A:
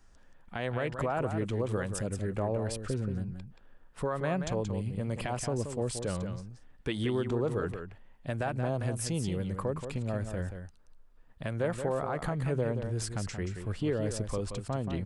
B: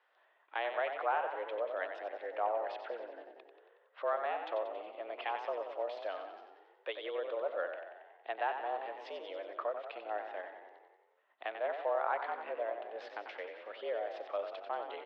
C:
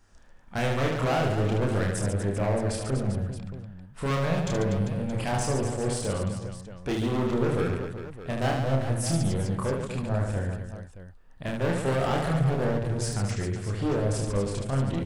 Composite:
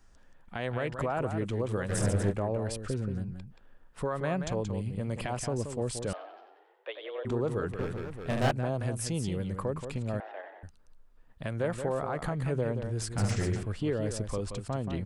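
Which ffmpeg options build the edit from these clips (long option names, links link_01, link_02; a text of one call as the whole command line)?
ffmpeg -i take0.wav -i take1.wav -i take2.wav -filter_complex "[2:a]asplit=3[link_01][link_02][link_03];[1:a]asplit=2[link_04][link_05];[0:a]asplit=6[link_06][link_07][link_08][link_09][link_10][link_11];[link_06]atrim=end=1.92[link_12];[link_01]atrim=start=1.88:end=2.34[link_13];[link_07]atrim=start=2.3:end=6.132[link_14];[link_04]atrim=start=6.128:end=7.252[link_15];[link_08]atrim=start=7.248:end=7.792[link_16];[link_02]atrim=start=7.788:end=8.512[link_17];[link_09]atrim=start=8.508:end=10.202[link_18];[link_05]atrim=start=10.198:end=10.632[link_19];[link_10]atrim=start=10.628:end=13.182[link_20];[link_03]atrim=start=13.178:end=13.632[link_21];[link_11]atrim=start=13.628[link_22];[link_12][link_13]acrossfade=duration=0.04:curve1=tri:curve2=tri[link_23];[link_23][link_14]acrossfade=duration=0.04:curve1=tri:curve2=tri[link_24];[link_24][link_15]acrossfade=duration=0.004:curve1=hsin:curve2=hsin[link_25];[link_25][link_16]acrossfade=duration=0.004:curve1=hsin:curve2=hsin[link_26];[link_26][link_17]acrossfade=duration=0.004:curve1=hsin:curve2=hsin[link_27];[link_27][link_18]acrossfade=duration=0.004:curve1=hsin:curve2=hsin[link_28];[link_28][link_19]acrossfade=duration=0.004:curve1=hsin:curve2=hsin[link_29];[link_29][link_20]acrossfade=duration=0.004:curve1=hsin:curve2=hsin[link_30];[link_30][link_21]acrossfade=duration=0.004:curve1=hsin:curve2=hsin[link_31];[link_31][link_22]acrossfade=duration=0.004:curve1=hsin:curve2=hsin" out.wav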